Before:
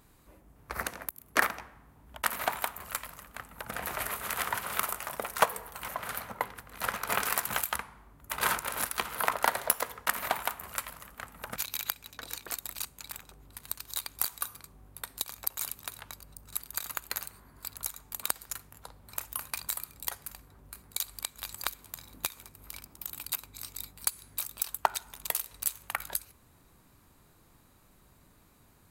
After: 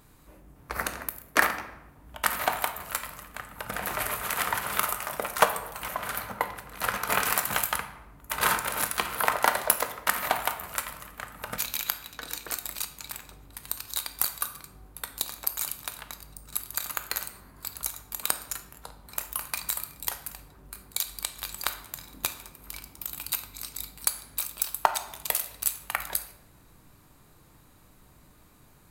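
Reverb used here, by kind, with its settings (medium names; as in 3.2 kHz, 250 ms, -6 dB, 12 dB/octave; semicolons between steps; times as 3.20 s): simulated room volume 270 m³, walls mixed, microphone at 0.46 m; trim +3.5 dB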